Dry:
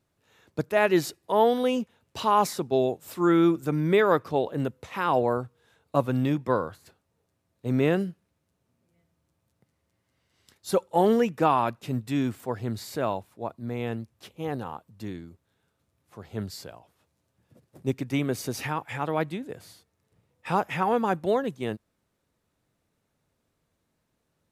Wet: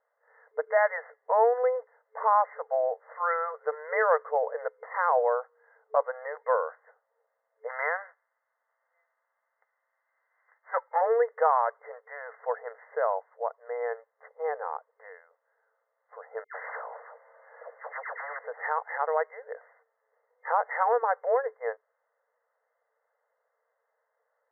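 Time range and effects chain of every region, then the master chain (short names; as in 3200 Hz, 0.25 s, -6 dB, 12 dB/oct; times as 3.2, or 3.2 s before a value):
7.68–11 spectral whitening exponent 0.6 + HPF 820 Hz
16.44–18.39 HPF 220 Hz + dispersion lows, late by 0.116 s, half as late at 1900 Hz + spectral compressor 10:1
whole clip: FFT band-pass 440–2100 Hz; compressor 1.5:1, threshold -30 dBFS; gain +4 dB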